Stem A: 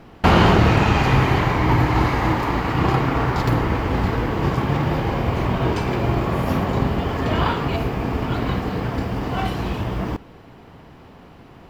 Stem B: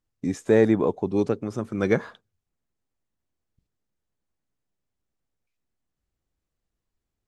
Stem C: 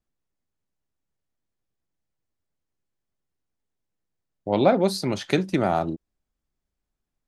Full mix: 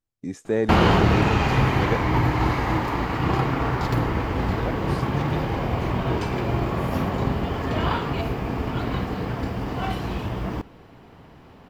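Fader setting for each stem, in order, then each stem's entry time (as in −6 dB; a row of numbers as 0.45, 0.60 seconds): −3.5, −5.0, −16.0 decibels; 0.45, 0.00, 0.00 seconds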